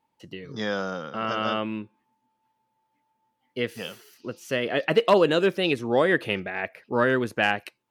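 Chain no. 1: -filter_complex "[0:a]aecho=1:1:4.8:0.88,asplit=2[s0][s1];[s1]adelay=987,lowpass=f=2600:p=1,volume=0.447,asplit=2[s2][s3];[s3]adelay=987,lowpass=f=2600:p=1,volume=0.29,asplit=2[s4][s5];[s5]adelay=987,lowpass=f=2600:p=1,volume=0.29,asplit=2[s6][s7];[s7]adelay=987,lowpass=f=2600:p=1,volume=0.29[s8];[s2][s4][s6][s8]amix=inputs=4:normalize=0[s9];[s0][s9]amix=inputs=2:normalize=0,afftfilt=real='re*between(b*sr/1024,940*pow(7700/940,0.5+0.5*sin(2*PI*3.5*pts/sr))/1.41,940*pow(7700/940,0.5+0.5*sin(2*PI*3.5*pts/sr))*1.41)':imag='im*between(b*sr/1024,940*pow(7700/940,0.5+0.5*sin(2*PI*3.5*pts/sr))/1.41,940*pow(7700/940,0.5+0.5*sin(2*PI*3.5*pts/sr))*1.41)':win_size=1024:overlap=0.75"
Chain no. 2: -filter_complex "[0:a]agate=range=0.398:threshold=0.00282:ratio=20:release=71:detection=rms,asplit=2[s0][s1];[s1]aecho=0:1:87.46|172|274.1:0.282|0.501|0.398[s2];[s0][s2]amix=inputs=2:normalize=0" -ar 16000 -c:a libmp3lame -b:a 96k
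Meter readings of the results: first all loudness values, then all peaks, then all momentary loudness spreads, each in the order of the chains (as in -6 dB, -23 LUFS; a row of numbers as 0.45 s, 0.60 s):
-33.5 LUFS, -24.0 LUFS; -11.0 dBFS, -7.0 dBFS; 17 LU, 18 LU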